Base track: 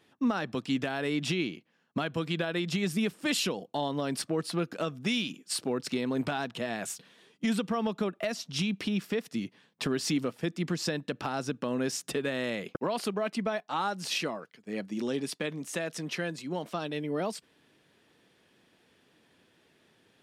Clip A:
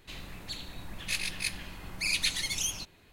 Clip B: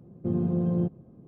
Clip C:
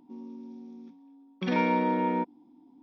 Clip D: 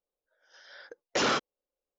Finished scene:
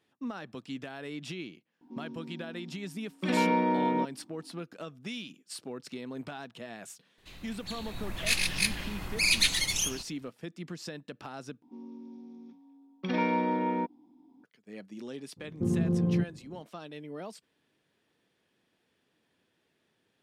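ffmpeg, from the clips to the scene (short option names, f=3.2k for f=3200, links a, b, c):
-filter_complex "[3:a]asplit=2[a][b];[0:a]volume=-9.5dB[c];[1:a]dynaudnorm=f=200:g=7:m=12.5dB[d];[2:a]equalizer=f=640:t=o:w=0.27:g=-12.5[e];[c]asplit=2[f][g];[f]atrim=end=11.624[h];[b]atrim=end=2.82,asetpts=PTS-STARTPTS,volume=-2.5dB[i];[g]atrim=start=14.436[j];[a]atrim=end=2.82,asetpts=PTS-STARTPTS,volume=-0.5dB,afade=t=in:d=0.004:c=hsin,afade=t=out:st=2.816:d=0.004:c=hsin,adelay=1810[k];[d]atrim=end=3.12,asetpts=PTS-STARTPTS,volume=-7dB,afade=t=in:d=0.004:c=hsin,afade=t=out:st=3.116:d=0.004:c=hsin,adelay=7180[l];[e]atrim=end=1.27,asetpts=PTS-STARTPTS,volume=-1dB,afade=t=in:d=0.02,afade=t=out:st=1.25:d=0.02,adelay=15360[m];[h][i]acrossfade=d=0.004:c1=hsin:c2=hsin[n];[n][j]acrossfade=d=0.004:c1=hsin:c2=hsin[o];[o][k][l][m]amix=inputs=4:normalize=0"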